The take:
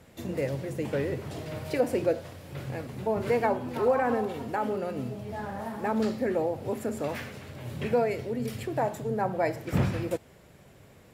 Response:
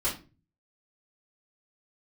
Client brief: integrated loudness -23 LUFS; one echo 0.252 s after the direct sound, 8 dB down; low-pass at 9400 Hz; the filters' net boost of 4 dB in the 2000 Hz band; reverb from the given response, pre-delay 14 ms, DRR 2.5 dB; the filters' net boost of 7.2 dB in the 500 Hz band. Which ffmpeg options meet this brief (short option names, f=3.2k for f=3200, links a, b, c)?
-filter_complex "[0:a]lowpass=9.4k,equalizer=f=500:t=o:g=8,equalizer=f=2k:t=o:g=4.5,aecho=1:1:252:0.398,asplit=2[a][b];[1:a]atrim=start_sample=2205,adelay=14[c];[b][c]afir=irnorm=-1:irlink=0,volume=-10.5dB[d];[a][d]amix=inputs=2:normalize=0,volume=-1.5dB"